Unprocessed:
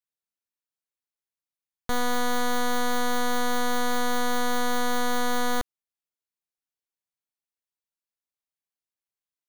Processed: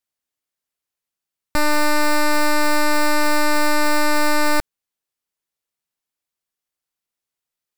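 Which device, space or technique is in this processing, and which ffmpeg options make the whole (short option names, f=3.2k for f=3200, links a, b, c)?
nightcore: -af "asetrate=53802,aresample=44100,volume=8dB"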